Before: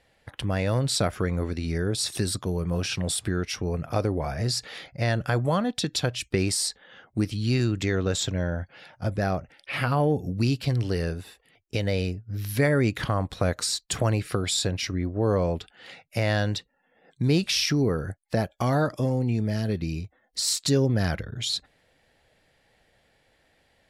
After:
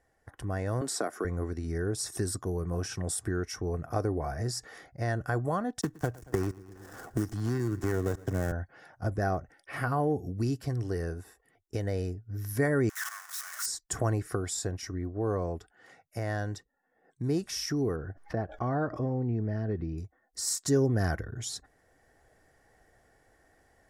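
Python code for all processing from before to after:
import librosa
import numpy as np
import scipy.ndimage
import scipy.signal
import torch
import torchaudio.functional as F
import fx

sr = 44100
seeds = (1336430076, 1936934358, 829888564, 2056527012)

y = fx.chain(x, sr, fx.highpass(hz=230.0, slope=24),
    fx.band_squash(depth_pct=70), at=(0.81, 1.25))
y = fx.chain(y, sr, fx.dead_time(dead_ms=0.22),
    fx.echo_feedback(ms=114, feedback_pct=58, wet_db=-23),
    fx.band_squash(depth_pct=100), at=(5.81, 8.52))
y = fx.chain(y, sr, fx.clip_1bit(),
    fx.highpass(hz=1300.0, slope=24),
    fx.band_widen(depth_pct=100), at=(12.89, 13.66))
y = fx.chain(y, sr, fx.air_absorb(metres=300.0),
    fx.pre_swell(db_per_s=120.0), at=(17.96, 19.98))
y = fx.band_shelf(y, sr, hz=3200.0, db=-14.0, octaves=1.2)
y = y + 0.35 * np.pad(y, (int(2.7 * sr / 1000.0), 0))[:len(y)]
y = fx.rider(y, sr, range_db=10, speed_s=2.0)
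y = y * librosa.db_to_amplitude(-5.5)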